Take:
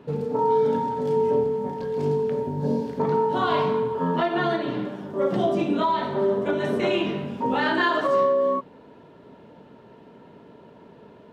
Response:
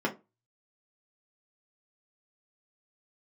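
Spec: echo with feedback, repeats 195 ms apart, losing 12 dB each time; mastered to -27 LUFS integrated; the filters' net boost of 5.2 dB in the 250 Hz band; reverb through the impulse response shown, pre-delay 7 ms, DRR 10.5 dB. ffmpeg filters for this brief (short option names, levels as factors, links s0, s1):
-filter_complex "[0:a]equalizer=f=250:t=o:g=6.5,aecho=1:1:195|390|585:0.251|0.0628|0.0157,asplit=2[s0][s1];[1:a]atrim=start_sample=2205,adelay=7[s2];[s1][s2]afir=irnorm=-1:irlink=0,volume=0.106[s3];[s0][s3]amix=inputs=2:normalize=0,volume=0.422"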